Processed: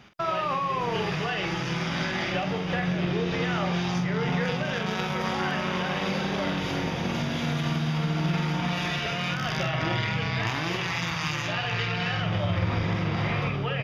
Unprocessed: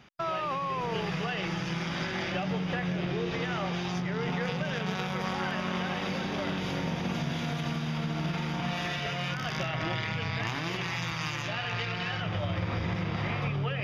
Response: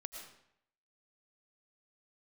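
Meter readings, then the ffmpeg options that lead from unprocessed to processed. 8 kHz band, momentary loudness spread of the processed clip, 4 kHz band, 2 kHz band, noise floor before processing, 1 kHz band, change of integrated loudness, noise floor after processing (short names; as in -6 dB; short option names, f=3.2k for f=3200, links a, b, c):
n/a, 2 LU, +4.5 dB, +4.5 dB, -34 dBFS, +4.5 dB, +4.0 dB, -30 dBFS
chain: -filter_complex "[0:a]asplit=2[a][b];[b]adelay=46,volume=-7dB[c];[a][c]amix=inputs=2:normalize=0,volume=3.5dB"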